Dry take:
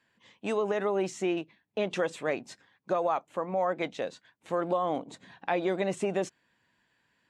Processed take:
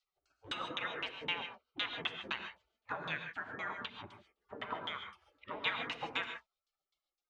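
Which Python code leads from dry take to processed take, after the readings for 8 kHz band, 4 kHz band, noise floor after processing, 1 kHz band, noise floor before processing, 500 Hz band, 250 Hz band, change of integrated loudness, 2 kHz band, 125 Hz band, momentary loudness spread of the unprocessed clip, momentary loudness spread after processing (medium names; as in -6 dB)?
under -15 dB, +5.5 dB, under -85 dBFS, -9.5 dB, -74 dBFS, -20.0 dB, -17.5 dB, -8.5 dB, 0.0 dB, -13.0 dB, 10 LU, 12 LU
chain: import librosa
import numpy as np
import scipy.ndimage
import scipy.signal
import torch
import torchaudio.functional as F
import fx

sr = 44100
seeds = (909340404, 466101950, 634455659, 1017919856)

y = fx.spec_gate(x, sr, threshold_db=-25, keep='weak')
y = fx.filter_lfo_lowpass(y, sr, shape='saw_down', hz=3.9, low_hz=270.0, high_hz=3800.0, q=2.1)
y = fx.rev_gated(y, sr, seeds[0], gate_ms=170, shape='rising', drr_db=6.0)
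y = y * 10.0 ** (8.5 / 20.0)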